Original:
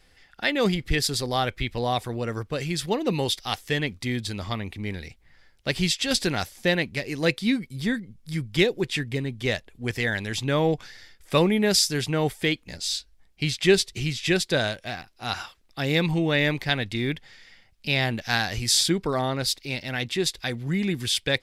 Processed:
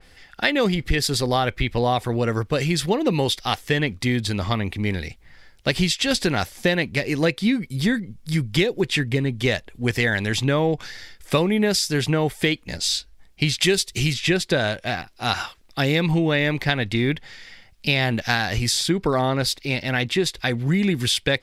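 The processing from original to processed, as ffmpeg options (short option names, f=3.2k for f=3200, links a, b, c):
-filter_complex "[0:a]asettb=1/sr,asplit=3[a][b][c];[a]atrim=end=13.604[d];[b]atrim=start=13.6:end=14.14,asetpts=PTS-STARTPTS,afade=t=in:d=0.004:c=qsin,afade=t=out:st=0.536:d=0.004:c=qsin,highshelf=f=4.3k:g=11[e];[c]atrim=start=14.136[f];[d][e]acrossfade=d=0.004:c1=hsin:c2=qsin[g];[g][f]acrossfade=d=0.004:c1=qsin:c2=hsin,acompressor=threshold=-24dB:ratio=6,adynamicequalizer=threshold=0.00708:dfrequency=3100:dqfactor=0.7:tfrequency=3100:tqfactor=0.7:attack=5:release=100:ratio=0.375:range=2.5:mode=cutabove:tftype=highshelf,volume=8dB"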